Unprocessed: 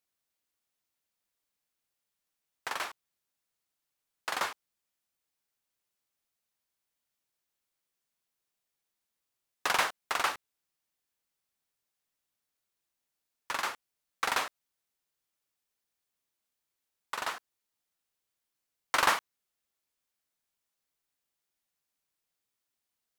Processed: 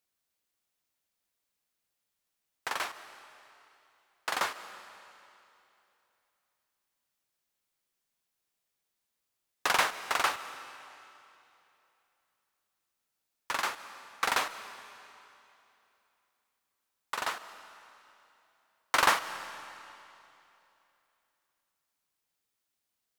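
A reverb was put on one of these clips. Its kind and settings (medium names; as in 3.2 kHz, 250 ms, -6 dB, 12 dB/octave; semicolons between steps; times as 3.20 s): algorithmic reverb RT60 2.9 s, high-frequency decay 0.95×, pre-delay 105 ms, DRR 13 dB; trim +1.5 dB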